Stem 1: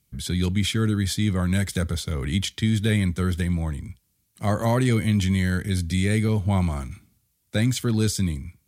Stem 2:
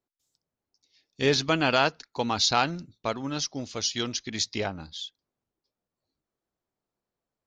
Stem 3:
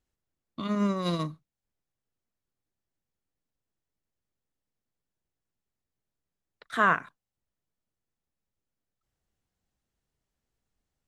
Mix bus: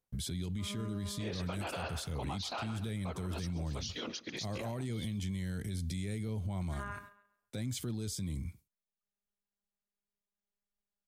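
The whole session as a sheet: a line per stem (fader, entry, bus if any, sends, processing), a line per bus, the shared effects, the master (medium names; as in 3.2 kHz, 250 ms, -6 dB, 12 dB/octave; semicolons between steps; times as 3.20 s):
-3.5 dB, 0.00 s, bus A, no send, no echo send, gate with hold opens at -42 dBFS
+1.0 dB, 0.00 s, bus A, no send, echo send -21 dB, whisper effect; band-pass filter 1.3 kHz, Q 0.61
-10.5 dB, 0.00 s, no bus, no send, echo send -19.5 dB, robot voice 203 Hz
bus A: 0.0 dB, peaking EQ 1.6 kHz -6.5 dB 1.2 oct; compression, threshold -28 dBFS, peak gain reduction 9 dB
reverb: none
echo: feedback delay 136 ms, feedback 28%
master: peak limiter -30 dBFS, peak gain reduction 11.5 dB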